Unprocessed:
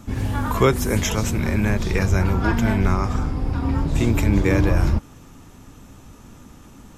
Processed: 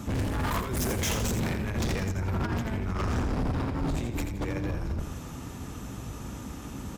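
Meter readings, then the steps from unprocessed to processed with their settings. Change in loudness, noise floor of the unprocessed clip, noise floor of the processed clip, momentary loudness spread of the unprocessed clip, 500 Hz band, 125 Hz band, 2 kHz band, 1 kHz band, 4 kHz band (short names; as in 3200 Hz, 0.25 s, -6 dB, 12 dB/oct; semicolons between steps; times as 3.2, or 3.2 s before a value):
-10.5 dB, -46 dBFS, -40 dBFS, 6 LU, -10.5 dB, -9.5 dB, -9.0 dB, -8.0 dB, -5.0 dB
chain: octaver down 1 oct, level -3 dB; HPF 43 Hz 12 dB/oct; negative-ratio compressor -23 dBFS, ratio -0.5; overloaded stage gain 27 dB; feedback echo 84 ms, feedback 33%, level -7.5 dB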